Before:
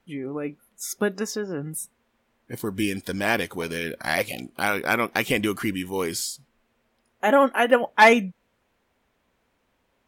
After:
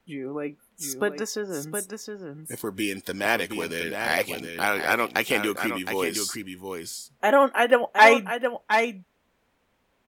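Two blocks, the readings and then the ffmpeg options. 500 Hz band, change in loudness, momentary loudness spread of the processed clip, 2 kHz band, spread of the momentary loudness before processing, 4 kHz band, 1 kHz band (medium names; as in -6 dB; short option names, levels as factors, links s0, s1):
0.0 dB, -0.5 dB, 16 LU, +0.5 dB, 16 LU, +0.5 dB, +0.5 dB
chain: -filter_complex "[0:a]aecho=1:1:716:0.422,acrossover=split=270|5100[s0][s1][s2];[s0]acompressor=threshold=0.00891:ratio=6[s3];[s3][s1][s2]amix=inputs=3:normalize=0"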